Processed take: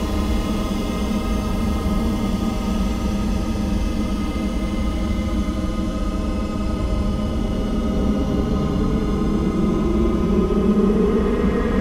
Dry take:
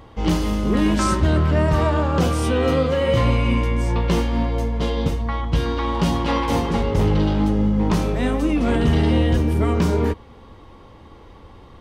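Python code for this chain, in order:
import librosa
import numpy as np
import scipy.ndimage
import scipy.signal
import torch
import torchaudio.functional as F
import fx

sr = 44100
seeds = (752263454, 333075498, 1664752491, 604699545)

y = fx.paulstretch(x, sr, seeds[0], factor=45.0, window_s=0.05, from_s=0.48)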